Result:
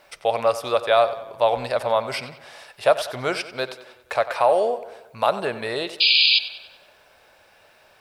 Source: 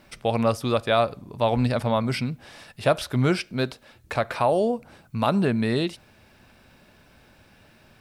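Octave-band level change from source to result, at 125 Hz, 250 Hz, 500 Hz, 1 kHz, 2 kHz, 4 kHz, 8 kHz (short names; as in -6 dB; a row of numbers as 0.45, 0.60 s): -14.0, -12.0, +3.5, +4.0, +6.0, +13.0, +1.5 dB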